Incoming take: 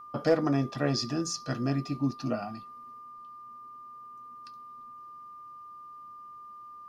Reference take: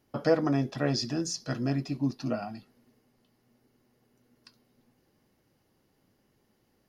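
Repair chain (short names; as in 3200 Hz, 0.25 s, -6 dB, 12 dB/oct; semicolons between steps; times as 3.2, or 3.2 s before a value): clip repair -14.5 dBFS; notch 1200 Hz, Q 30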